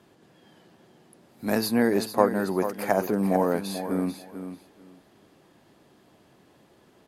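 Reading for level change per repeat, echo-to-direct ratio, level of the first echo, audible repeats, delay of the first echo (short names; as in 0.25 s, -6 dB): -15.0 dB, -10.0 dB, -10.0 dB, 2, 0.442 s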